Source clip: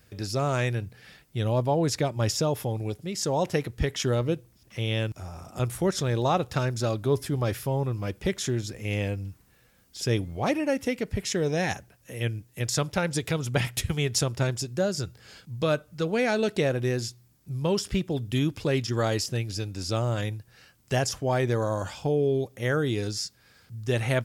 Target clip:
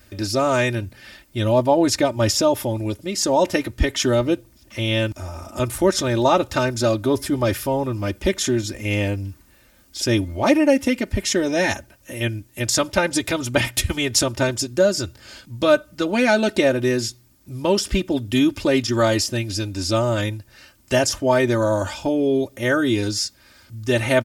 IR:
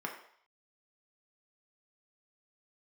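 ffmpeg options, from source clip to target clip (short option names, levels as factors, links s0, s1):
-af "aecho=1:1:3.3:0.85,volume=2"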